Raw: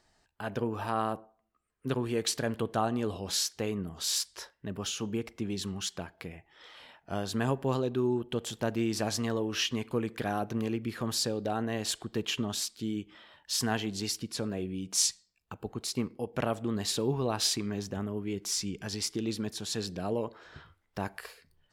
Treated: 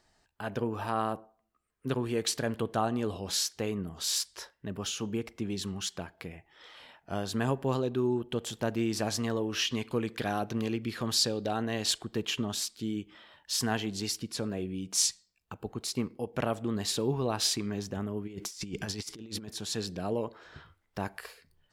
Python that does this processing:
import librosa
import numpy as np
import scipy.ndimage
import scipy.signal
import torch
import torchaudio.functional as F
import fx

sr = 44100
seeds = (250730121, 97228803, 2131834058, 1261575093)

y = fx.peak_eq(x, sr, hz=4100.0, db=5.5, octaves=1.5, at=(9.67, 11.98))
y = fx.over_compress(y, sr, threshold_db=-39.0, ratio=-0.5, at=(18.26, 19.48), fade=0.02)